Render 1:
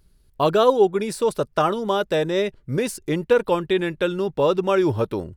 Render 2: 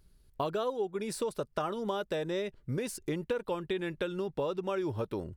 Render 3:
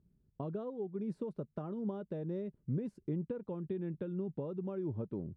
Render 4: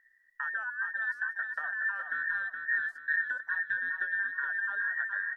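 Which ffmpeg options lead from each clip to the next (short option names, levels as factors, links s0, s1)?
-af "acompressor=threshold=0.0501:ratio=5,volume=0.596"
-af "bandpass=f=180:t=q:w=1.5:csg=0,volume=1.33"
-af "afftfilt=real='real(if(between(b,1,1012),(2*floor((b-1)/92)+1)*92-b,b),0)':imag='imag(if(between(b,1,1012),(2*floor((b-1)/92)+1)*92-b,b),0)*if(between(b,1,1012),-1,1)':win_size=2048:overlap=0.75,aecho=1:1:419|838|1257|1676|2095:0.531|0.202|0.0767|0.0291|0.0111,volume=1.68"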